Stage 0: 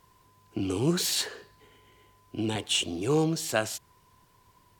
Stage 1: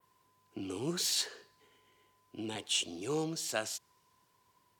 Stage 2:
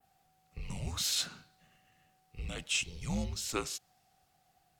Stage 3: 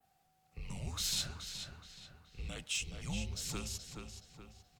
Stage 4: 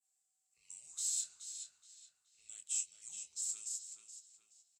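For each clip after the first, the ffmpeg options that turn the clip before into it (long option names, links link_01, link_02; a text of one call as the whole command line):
ffmpeg -i in.wav -af "highpass=frequency=220:poles=1,adynamicequalizer=threshold=0.00708:dfrequency=5600:dqfactor=0.91:tfrequency=5600:tqfactor=0.91:attack=5:release=100:ratio=0.375:range=3:mode=boostabove:tftype=bell,volume=-8dB" out.wav
ffmpeg -i in.wav -af "afreqshift=-260" out.wav
ffmpeg -i in.wav -filter_complex "[0:a]asoftclip=type=hard:threshold=-23.5dB,acrossover=split=170|3000[link_01][link_02][link_03];[link_02]acompressor=threshold=-41dB:ratio=6[link_04];[link_01][link_04][link_03]amix=inputs=3:normalize=0,asplit=2[link_05][link_06];[link_06]adelay=424,lowpass=frequency=3900:poles=1,volume=-5.5dB,asplit=2[link_07][link_08];[link_08]adelay=424,lowpass=frequency=3900:poles=1,volume=0.46,asplit=2[link_09][link_10];[link_10]adelay=424,lowpass=frequency=3900:poles=1,volume=0.46,asplit=2[link_11][link_12];[link_12]adelay=424,lowpass=frequency=3900:poles=1,volume=0.46,asplit=2[link_13][link_14];[link_14]adelay=424,lowpass=frequency=3900:poles=1,volume=0.46,asplit=2[link_15][link_16];[link_16]adelay=424,lowpass=frequency=3900:poles=1,volume=0.46[link_17];[link_07][link_09][link_11][link_13][link_15][link_17]amix=inputs=6:normalize=0[link_18];[link_05][link_18]amix=inputs=2:normalize=0,volume=-3dB" out.wav
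ffmpeg -i in.wav -filter_complex "[0:a]asplit=2[link_01][link_02];[link_02]adelay=25,volume=-8.5dB[link_03];[link_01][link_03]amix=inputs=2:normalize=0,asoftclip=type=hard:threshold=-31dB,bandpass=frequency=7700:width_type=q:width=7.6:csg=0,volume=9.5dB" out.wav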